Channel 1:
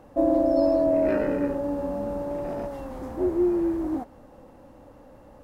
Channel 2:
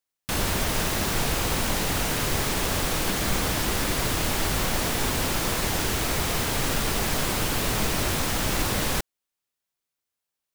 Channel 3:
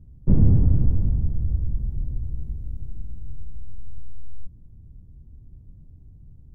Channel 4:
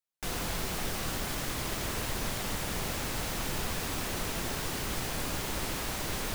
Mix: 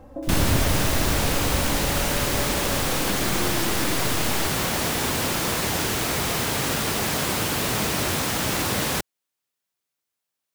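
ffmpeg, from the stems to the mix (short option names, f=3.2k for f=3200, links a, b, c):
-filter_complex "[0:a]aecho=1:1:3.8:0.65,acompressor=threshold=-32dB:ratio=6,volume=0dB[a];[1:a]highpass=88,volume=2dB[b];[2:a]aeval=exprs='clip(val(0),-1,0.158)':c=same,volume=-4dB[c];[3:a]volume=-12.5dB[d];[a][b][c][d]amix=inputs=4:normalize=0"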